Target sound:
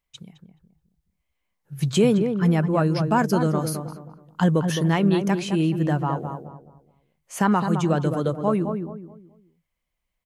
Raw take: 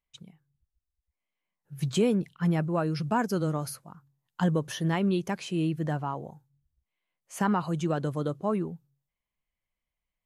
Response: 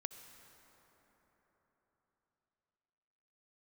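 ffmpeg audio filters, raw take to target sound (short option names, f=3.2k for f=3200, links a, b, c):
-filter_complex "[0:a]asplit=2[a][b];[b]adelay=213,lowpass=f=1.2k:p=1,volume=-6dB,asplit=2[c][d];[d]adelay=213,lowpass=f=1.2k:p=1,volume=0.33,asplit=2[e][f];[f]adelay=213,lowpass=f=1.2k:p=1,volume=0.33,asplit=2[g][h];[h]adelay=213,lowpass=f=1.2k:p=1,volume=0.33[i];[a][c][e][g][i]amix=inputs=5:normalize=0,volume=6dB"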